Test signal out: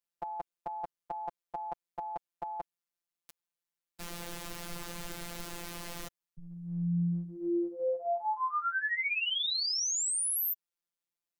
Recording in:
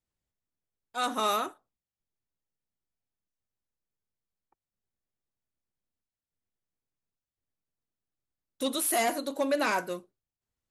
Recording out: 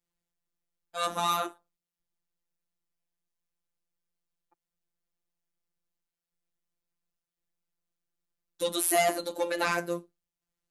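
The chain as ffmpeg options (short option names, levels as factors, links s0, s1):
-af "acontrast=46,afftfilt=real='hypot(re,im)*cos(PI*b)':imag='0':win_size=1024:overlap=0.75,volume=0.841"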